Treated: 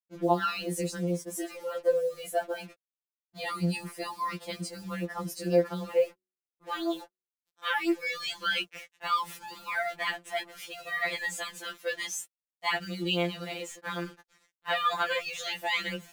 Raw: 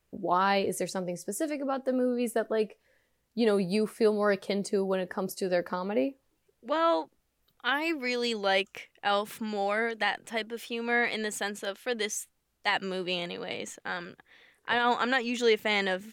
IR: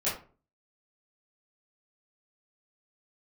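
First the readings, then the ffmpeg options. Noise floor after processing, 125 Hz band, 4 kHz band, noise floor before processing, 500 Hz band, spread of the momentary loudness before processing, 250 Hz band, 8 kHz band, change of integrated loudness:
under -85 dBFS, +3.5 dB, -0.5 dB, -75 dBFS, -3.0 dB, 10 LU, -3.0 dB, -0.5 dB, -2.0 dB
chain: -af "acrusher=bits=7:mix=0:aa=0.5,bandreject=f=282.8:t=h:w=4,bandreject=f=565.6:t=h:w=4,afftfilt=real='re*2.83*eq(mod(b,8),0)':imag='im*2.83*eq(mod(b,8),0)':win_size=2048:overlap=0.75,volume=1.26"

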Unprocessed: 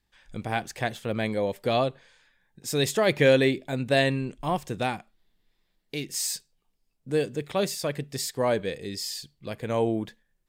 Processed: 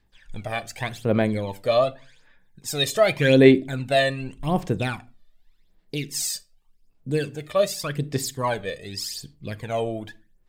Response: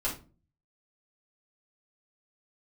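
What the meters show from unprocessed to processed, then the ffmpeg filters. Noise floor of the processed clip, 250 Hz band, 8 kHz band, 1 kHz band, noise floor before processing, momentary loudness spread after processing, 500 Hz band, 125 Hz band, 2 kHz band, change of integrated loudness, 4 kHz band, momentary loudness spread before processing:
-61 dBFS, +5.0 dB, +2.0 dB, +2.0 dB, -74 dBFS, 17 LU, +3.5 dB, +4.0 dB, +2.5 dB, +3.5 dB, +3.0 dB, 14 LU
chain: -filter_complex "[0:a]aphaser=in_gain=1:out_gain=1:delay=1.7:decay=0.7:speed=0.86:type=sinusoidal,asplit=2[s0][s1];[1:a]atrim=start_sample=2205,afade=t=out:st=0.31:d=0.01,atrim=end_sample=14112[s2];[s1][s2]afir=irnorm=-1:irlink=0,volume=0.112[s3];[s0][s3]amix=inputs=2:normalize=0,volume=0.841"

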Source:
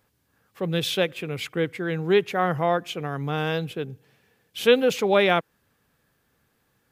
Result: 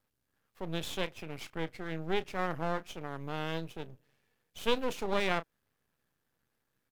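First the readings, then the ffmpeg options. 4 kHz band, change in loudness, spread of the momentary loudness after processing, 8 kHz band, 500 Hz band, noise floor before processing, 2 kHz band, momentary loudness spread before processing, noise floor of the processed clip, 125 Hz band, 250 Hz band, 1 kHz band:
-10.5 dB, -11.5 dB, 12 LU, -9.5 dB, -13.5 dB, -70 dBFS, -10.5 dB, 12 LU, -82 dBFS, -11.5 dB, -11.0 dB, -10.0 dB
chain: -filter_complex "[0:a]asplit=2[s0][s1];[s1]adelay=31,volume=0.211[s2];[s0][s2]amix=inputs=2:normalize=0,aeval=exprs='max(val(0),0)':c=same,volume=0.376"

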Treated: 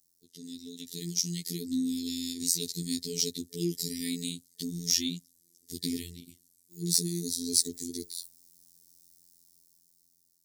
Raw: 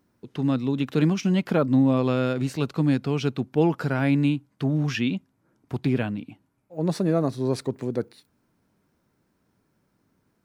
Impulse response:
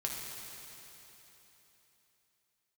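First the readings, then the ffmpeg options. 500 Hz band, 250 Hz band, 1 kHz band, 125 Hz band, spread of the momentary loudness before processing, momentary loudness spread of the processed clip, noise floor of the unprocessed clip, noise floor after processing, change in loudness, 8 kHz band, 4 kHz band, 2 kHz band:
-16.0 dB, -11.5 dB, under -40 dB, -15.5 dB, 9 LU, 16 LU, -71 dBFS, -70 dBFS, -6.5 dB, +16.5 dB, +6.0 dB, -17.0 dB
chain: -af "afftfilt=real='re*(1-between(b*sr/4096,450,1800))':imag='im*(1-between(b*sr/4096,450,1800))':win_size=4096:overlap=0.75,highpass=57,dynaudnorm=f=410:g=7:m=4.47,afftfilt=real='hypot(re,im)*cos(PI*b)':imag='0':win_size=2048:overlap=0.75,aexciter=amount=15.6:drive=9.2:freq=4200,volume=0.133"

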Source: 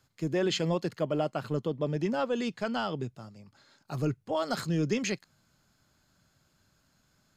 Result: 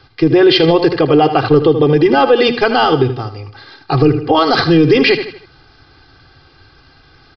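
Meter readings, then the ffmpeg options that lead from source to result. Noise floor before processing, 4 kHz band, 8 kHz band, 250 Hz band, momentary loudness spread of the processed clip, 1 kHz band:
-71 dBFS, +20.5 dB, no reading, +19.0 dB, 8 LU, +22.0 dB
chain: -af "bandreject=f=60:t=h:w=6,bandreject=f=120:t=h:w=6,bandreject=f=180:t=h:w=6,bandreject=f=240:t=h:w=6,aecho=1:1:2.5:0.98,aecho=1:1:78|156|234|312:0.224|0.0918|0.0376|0.0154,aresample=11025,aresample=44100,alimiter=level_in=13.3:limit=0.891:release=50:level=0:latency=1,volume=0.891"

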